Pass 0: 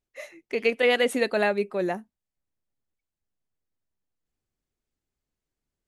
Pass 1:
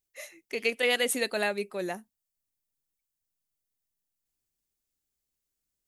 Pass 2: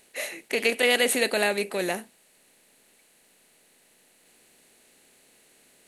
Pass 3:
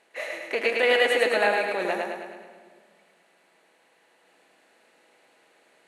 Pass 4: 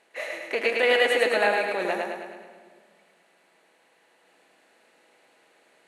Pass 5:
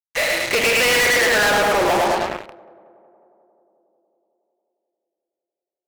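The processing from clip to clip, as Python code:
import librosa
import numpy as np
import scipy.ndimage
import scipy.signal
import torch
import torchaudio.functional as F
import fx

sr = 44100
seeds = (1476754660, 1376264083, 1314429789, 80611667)

y1 = librosa.effects.preemphasis(x, coef=0.8, zi=[0.0])
y1 = y1 * 10.0 ** (7.0 / 20.0)
y2 = fx.bin_compress(y1, sr, power=0.6)
y2 = y2 * 10.0 ** (2.5 / 20.0)
y3 = fx.bandpass_q(y2, sr, hz=970.0, q=0.84)
y3 = fx.echo_feedback(y3, sr, ms=106, feedback_pct=55, wet_db=-3)
y3 = fx.room_shoebox(y3, sr, seeds[0], volume_m3=3800.0, walls='mixed', distance_m=0.67)
y3 = y3 * 10.0 ** (3.5 / 20.0)
y4 = y3
y5 = fx.filter_sweep_lowpass(y4, sr, from_hz=5200.0, to_hz=1100.0, start_s=0.23, end_s=1.8, q=3.2)
y5 = fx.fuzz(y5, sr, gain_db=36.0, gate_db=-38.0)
y5 = fx.echo_tape(y5, sr, ms=181, feedback_pct=83, wet_db=-18.0, lp_hz=1400.0, drive_db=16.0, wow_cents=39)
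y5 = y5 * 10.0 ** (-2.0 / 20.0)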